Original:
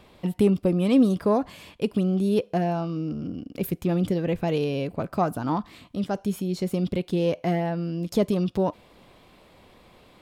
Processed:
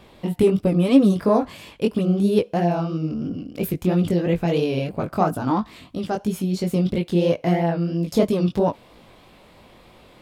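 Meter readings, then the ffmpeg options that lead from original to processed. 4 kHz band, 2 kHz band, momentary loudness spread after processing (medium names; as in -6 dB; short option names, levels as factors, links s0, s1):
+4.0 dB, +4.0 dB, 10 LU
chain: -af "flanger=delay=17.5:depth=5.8:speed=3,volume=2.24"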